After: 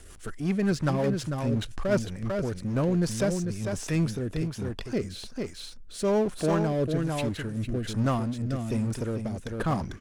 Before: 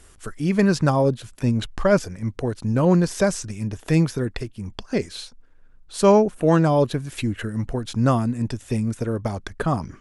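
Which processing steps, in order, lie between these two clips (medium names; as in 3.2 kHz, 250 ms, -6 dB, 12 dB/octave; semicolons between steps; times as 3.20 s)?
delay 447 ms -7 dB; power-law waveshaper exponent 0.7; rotary cabinet horn 5.5 Hz, later 1.2 Hz, at 2.31 s; trim -9 dB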